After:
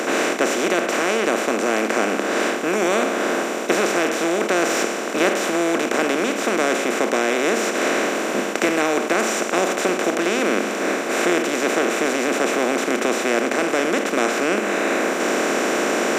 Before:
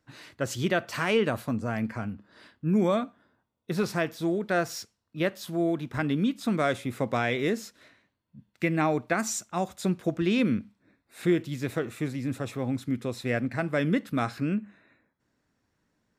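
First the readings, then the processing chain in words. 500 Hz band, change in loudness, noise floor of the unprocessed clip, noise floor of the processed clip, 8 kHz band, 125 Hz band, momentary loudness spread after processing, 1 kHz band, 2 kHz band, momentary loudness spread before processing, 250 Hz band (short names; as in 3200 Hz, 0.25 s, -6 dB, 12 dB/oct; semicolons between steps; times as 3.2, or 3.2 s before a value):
+11.0 dB, +8.5 dB, -77 dBFS, -25 dBFS, +15.0 dB, -8.0 dB, 2 LU, +12.0 dB, +13.0 dB, 8 LU, +5.5 dB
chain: per-bin compression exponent 0.2; vocal rider 0.5 s; HPF 270 Hz 24 dB/oct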